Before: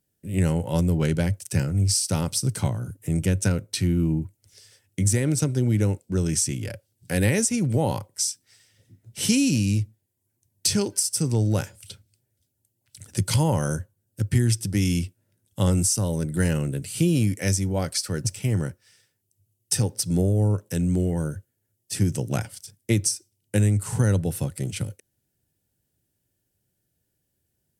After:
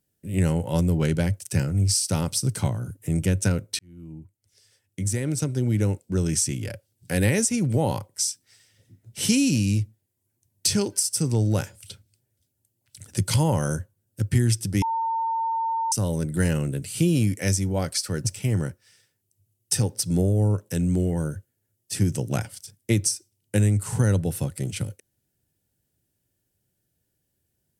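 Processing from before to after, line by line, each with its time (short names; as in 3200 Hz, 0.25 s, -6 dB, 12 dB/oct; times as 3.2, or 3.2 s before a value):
3.79–6.03 fade in
14.82–15.92 bleep 906 Hz -22.5 dBFS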